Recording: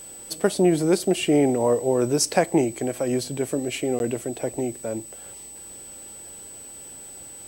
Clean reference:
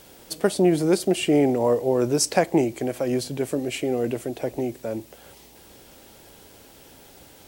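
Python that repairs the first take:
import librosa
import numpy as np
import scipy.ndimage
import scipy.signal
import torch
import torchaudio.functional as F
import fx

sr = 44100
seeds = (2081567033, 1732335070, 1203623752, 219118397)

y = fx.notch(x, sr, hz=8000.0, q=30.0)
y = fx.fix_interpolate(y, sr, at_s=(3.99,), length_ms=11.0)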